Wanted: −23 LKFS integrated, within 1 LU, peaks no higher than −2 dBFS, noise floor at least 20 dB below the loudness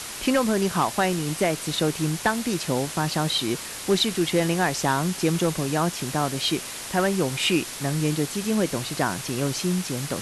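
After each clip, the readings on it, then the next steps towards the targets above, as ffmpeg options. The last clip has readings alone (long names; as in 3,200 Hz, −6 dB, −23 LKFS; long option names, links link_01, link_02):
background noise floor −36 dBFS; target noise floor −45 dBFS; integrated loudness −24.5 LKFS; sample peak −11.0 dBFS; target loudness −23.0 LKFS
→ -af "afftdn=noise_reduction=9:noise_floor=-36"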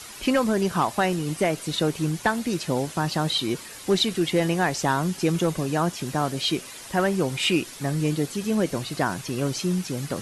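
background noise floor −41 dBFS; target noise floor −45 dBFS
→ -af "afftdn=noise_reduction=6:noise_floor=-41"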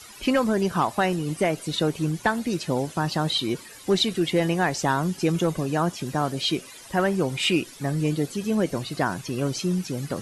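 background noise floor −45 dBFS; integrated loudness −25.0 LKFS; sample peak −12.0 dBFS; target loudness −23.0 LKFS
→ -af "volume=2dB"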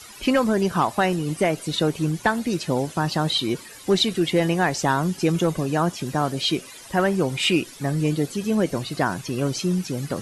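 integrated loudness −23.0 LKFS; sample peak −10.0 dBFS; background noise floor −43 dBFS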